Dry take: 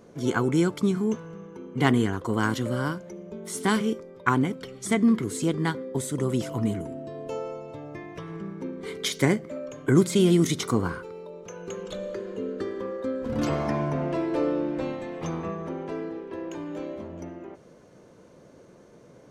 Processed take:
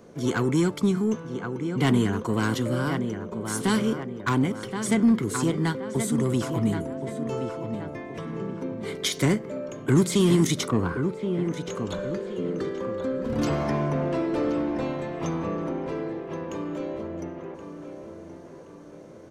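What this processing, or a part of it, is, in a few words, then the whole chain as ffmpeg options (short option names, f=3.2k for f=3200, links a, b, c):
one-band saturation: -filter_complex "[0:a]asplit=2[a][b];[b]adelay=1074,lowpass=f=2.8k:p=1,volume=-9dB,asplit=2[c][d];[d]adelay=1074,lowpass=f=2.8k:p=1,volume=0.43,asplit=2[e][f];[f]adelay=1074,lowpass=f=2.8k:p=1,volume=0.43,asplit=2[g][h];[h]adelay=1074,lowpass=f=2.8k:p=1,volume=0.43,asplit=2[i][j];[j]adelay=1074,lowpass=f=2.8k:p=1,volume=0.43[k];[a][c][e][g][i][k]amix=inputs=6:normalize=0,asettb=1/sr,asplit=3[l][m][n];[l]atrim=end=10.684[o];[m]atrim=start=10.68:end=11.54,asetpts=PTS-STARTPTS,afade=t=in:d=0.004:c=qsin,afade=t=out:st=0.856:d=0.004:c=qsin,acrossover=split=2600[p][q];[q]acompressor=threshold=-59dB:ratio=4:attack=1:release=60[r];[p][r]amix=inputs=2:normalize=0[s];[n]atrim=start=11.536[t];[o][s]acrossfade=d=0.004:c1=hsin:c2=qsin[u];[u][t]acrossfade=d=0.004:c1=qsin:c2=hsin,acrossover=split=240|2900[v][w][x];[w]asoftclip=type=tanh:threshold=-23.5dB[y];[v][y][x]amix=inputs=3:normalize=0,volume=2dB"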